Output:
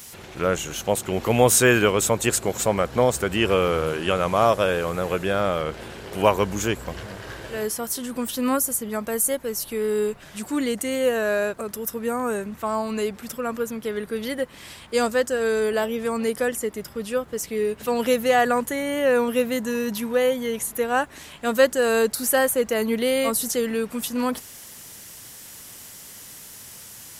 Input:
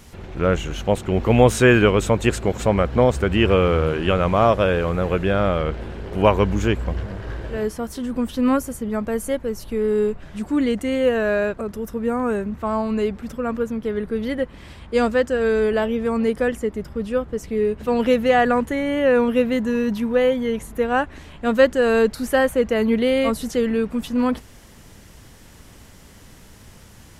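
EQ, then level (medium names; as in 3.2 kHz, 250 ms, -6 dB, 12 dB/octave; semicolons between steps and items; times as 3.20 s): RIAA curve recording; dynamic bell 2.7 kHz, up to -5 dB, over -34 dBFS, Q 0.74; peaking EQ 120 Hz +5.5 dB 1.1 oct; 0.0 dB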